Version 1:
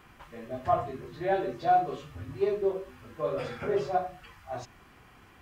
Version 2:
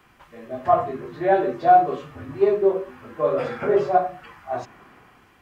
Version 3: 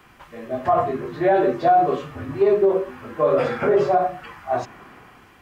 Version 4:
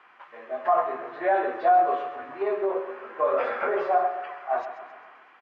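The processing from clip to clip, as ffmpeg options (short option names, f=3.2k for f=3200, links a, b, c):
-filter_complex "[0:a]lowshelf=f=150:g=-5,acrossover=split=130|2100[a][b][c];[b]dynaudnorm=f=100:g=11:m=10dB[d];[a][d][c]amix=inputs=3:normalize=0"
-af "alimiter=level_in=13dB:limit=-1dB:release=50:level=0:latency=1,volume=-8dB"
-af "highpass=730,lowpass=2.1k,aecho=1:1:133|266|399|532|665:0.282|0.138|0.0677|0.0332|0.0162"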